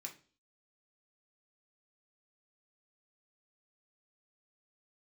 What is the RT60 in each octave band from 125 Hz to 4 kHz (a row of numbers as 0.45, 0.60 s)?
0.45, 0.50, 0.45, 0.35, 0.35, 0.45 s